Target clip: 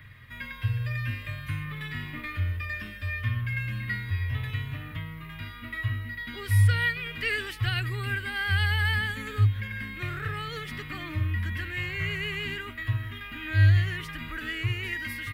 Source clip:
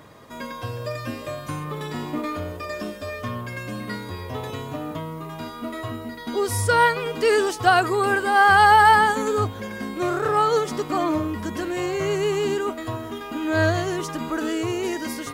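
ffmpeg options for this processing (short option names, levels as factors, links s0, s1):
-filter_complex "[0:a]acrossover=split=320|580|2400[s0][s1][s2][s3];[s2]acompressor=threshold=0.0282:ratio=6[s4];[s0][s1][s4][s3]amix=inputs=4:normalize=0,firequalizer=gain_entry='entry(110,0);entry(160,-14);entry(350,-27);entry(730,-29);entry(1900,-1);entry(6300,-27);entry(12000,-13)':delay=0.05:min_phase=1,volume=2.37"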